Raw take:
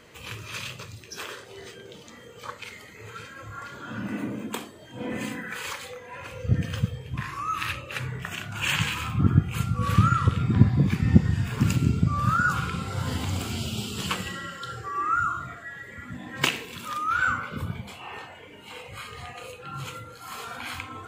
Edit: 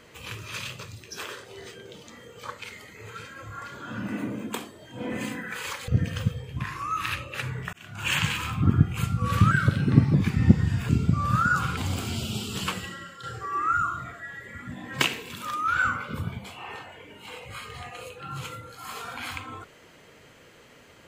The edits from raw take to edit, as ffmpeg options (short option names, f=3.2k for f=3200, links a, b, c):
-filter_complex "[0:a]asplit=8[a][b][c][d][e][f][g][h];[a]atrim=end=5.882[i];[b]atrim=start=6.448:end=8.3,asetpts=PTS-STARTPTS,afade=t=out:st=1.848:d=0.004:c=hsin[j];[c]atrim=start=8.3:end=10.084,asetpts=PTS-STARTPTS,afade=t=in:d=0.34[k];[d]atrim=start=10.08:end=10.8,asetpts=PTS-STARTPTS,asetrate=50274,aresample=44100[l];[e]atrim=start=10.796:end=11.552[m];[f]atrim=start=11.828:end=12.712[n];[g]atrim=start=13.198:end=14.66,asetpts=PTS-STARTPTS,afade=t=out:st=0.782:d=0.68:silence=0.398107[o];[h]atrim=start=14.66,asetpts=PTS-STARTPTS,afade=t=in:d=0.004:c=hsin:silence=0.398107[p];[j][k]concat=n=2:v=0:a=1[q];[i][q]acrossfade=d=0.004:c1=hsin:c2=hsin[r];[r][l]acrossfade=d=0.004:c1=hsin:c2=hsin[s];[s][m]acrossfade=d=0.004:c1=hsin:c2=hsin[t];[t][n]acrossfade=d=0.004:c1=hsin:c2=hsin[u];[o][p]concat=n=2:v=0:a=1[v];[u][v]acrossfade=d=0.004:c1=hsin:c2=hsin"